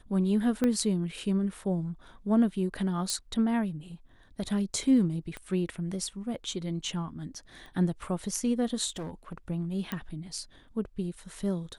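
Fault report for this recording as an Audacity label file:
0.640000	0.640000	pop -15 dBFS
3.100000	3.100000	pop -16 dBFS
5.370000	5.370000	pop -24 dBFS
7.660000	7.660000	pop -35 dBFS
8.890000	9.380000	clipped -33 dBFS
9.920000	9.920000	pop -18 dBFS

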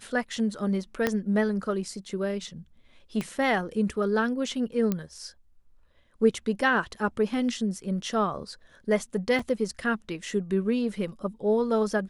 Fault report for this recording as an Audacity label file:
1.070000	1.070000	pop -10 dBFS
3.210000	3.210000	pop -18 dBFS
4.920000	4.920000	pop -14 dBFS
9.390000	9.390000	dropout 3.3 ms

